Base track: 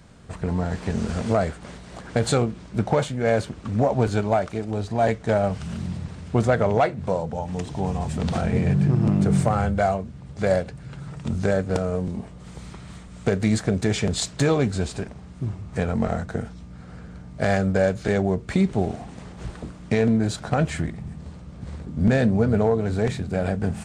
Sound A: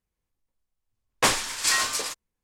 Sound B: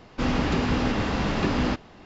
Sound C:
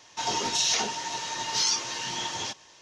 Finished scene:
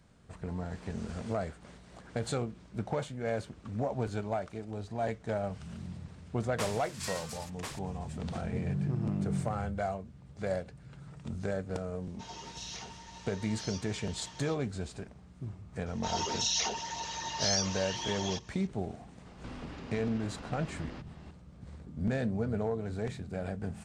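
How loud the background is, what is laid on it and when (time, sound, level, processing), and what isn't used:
base track −12.5 dB
0:05.36: mix in A −17 dB + single-tap delay 1,043 ms −4.5 dB
0:12.02: mix in C −17 dB + high-shelf EQ 9,000 Hz −8 dB
0:15.86: mix in C −5.5 dB + spectral envelope exaggerated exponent 1.5
0:19.26: mix in B −7 dB + downward compressor 3 to 1, threshold −39 dBFS

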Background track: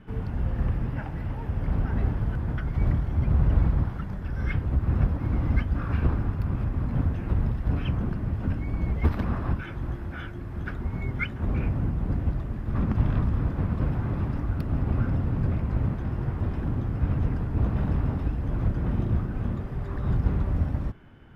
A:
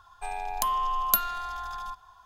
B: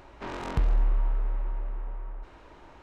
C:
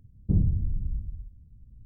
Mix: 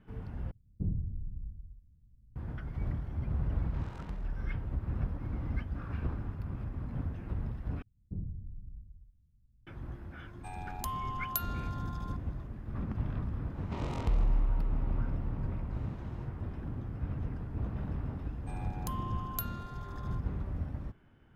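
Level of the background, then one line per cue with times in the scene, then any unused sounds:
background track −11 dB
0:00.51: overwrite with C −10.5 dB
0:03.52: mix in B −15.5 dB
0:07.82: overwrite with C −16 dB
0:10.22: mix in A −11 dB
0:13.50: mix in B −4.5 dB, fades 0.10 s + parametric band 1,600 Hz −15 dB 0.24 octaves
0:18.25: mix in A −14.5 dB

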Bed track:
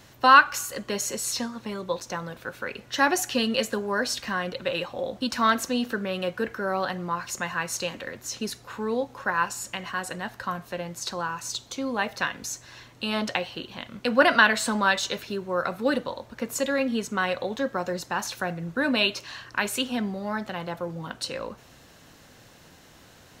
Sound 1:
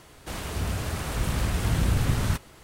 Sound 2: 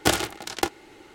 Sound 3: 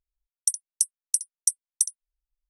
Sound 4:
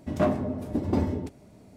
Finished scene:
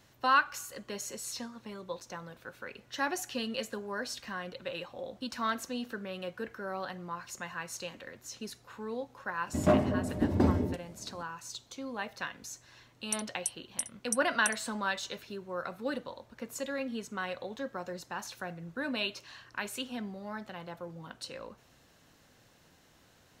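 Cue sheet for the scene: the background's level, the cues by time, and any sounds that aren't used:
bed track −10.5 dB
0:09.47: mix in 4 −0.5 dB
0:12.65: mix in 3 −11 dB
not used: 1, 2

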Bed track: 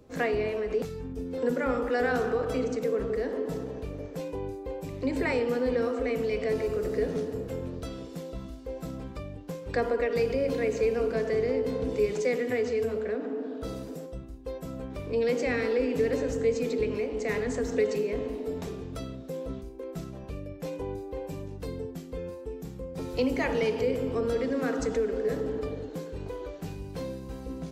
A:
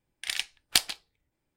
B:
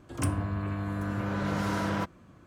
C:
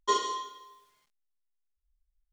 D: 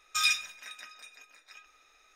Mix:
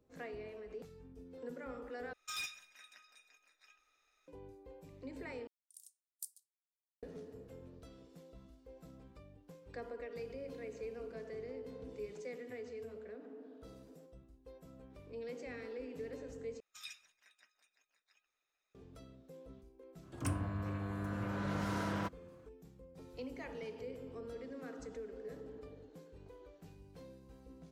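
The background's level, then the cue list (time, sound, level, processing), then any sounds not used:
bed track −18.5 dB
0:02.13: overwrite with D −13.5 dB + hard clipping −23 dBFS
0:05.47: overwrite with A −15.5 dB + inverse Chebyshev high-pass filter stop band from 1,500 Hz, stop band 80 dB
0:16.60: overwrite with D −18 dB + harmonic and percussive parts rebalanced harmonic −14 dB
0:20.03: mix in B −7.5 dB
not used: C

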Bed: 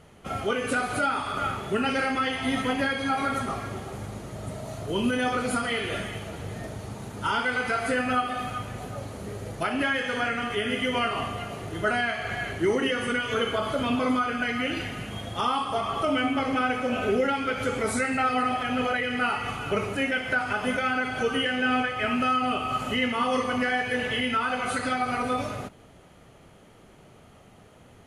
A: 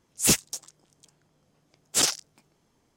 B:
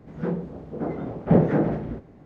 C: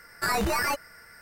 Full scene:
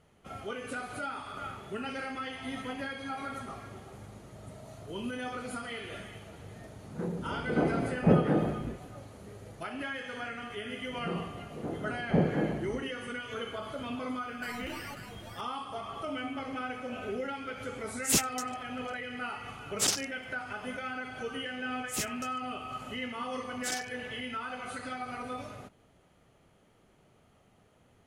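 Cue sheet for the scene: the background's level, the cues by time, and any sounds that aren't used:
bed −11.5 dB
0:06.76: mix in B −10.5 dB + automatic gain control gain up to 13 dB
0:10.83: mix in B −8.5 dB
0:14.20: mix in C −17.5 dB + single-tap delay 538 ms −7 dB
0:17.85: mix in A −5.5 dB
0:21.69: mix in A −14 dB

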